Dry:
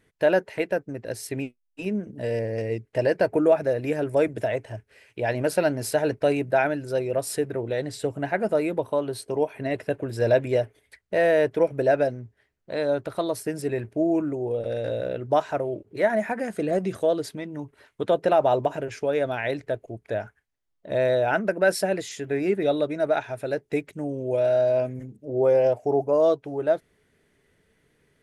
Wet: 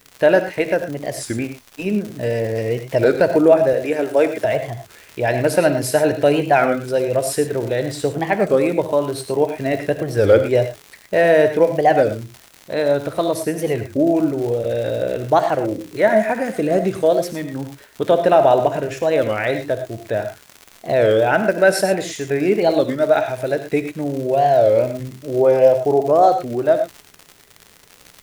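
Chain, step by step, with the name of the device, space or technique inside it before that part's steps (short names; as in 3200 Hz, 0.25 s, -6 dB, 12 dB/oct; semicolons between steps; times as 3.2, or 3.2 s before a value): warped LP (record warp 33 1/3 rpm, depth 250 cents; crackle 140/s -33 dBFS; white noise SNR 41 dB); 3.73–4.45 HPF 290 Hz 12 dB/oct; non-linear reverb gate 0.13 s rising, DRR 8 dB; gain +6.5 dB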